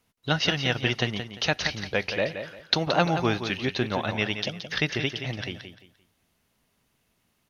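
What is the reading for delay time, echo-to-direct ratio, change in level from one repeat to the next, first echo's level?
0.173 s, -8.5 dB, -11.5 dB, -9.0 dB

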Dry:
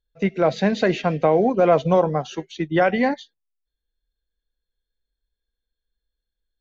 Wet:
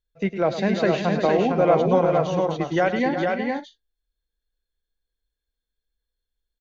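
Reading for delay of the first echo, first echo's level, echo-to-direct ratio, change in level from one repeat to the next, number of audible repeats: 0.105 s, -11.5 dB, -1.5 dB, no steady repeat, 4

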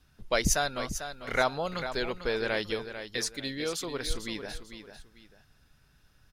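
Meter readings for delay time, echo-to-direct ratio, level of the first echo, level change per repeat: 0.446 s, -9.5 dB, -10.0 dB, -10.5 dB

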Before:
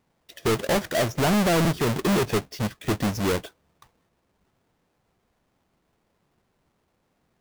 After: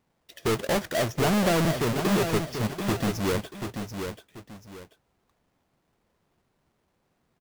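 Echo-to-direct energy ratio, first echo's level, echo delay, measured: -6.5 dB, -7.0 dB, 0.736 s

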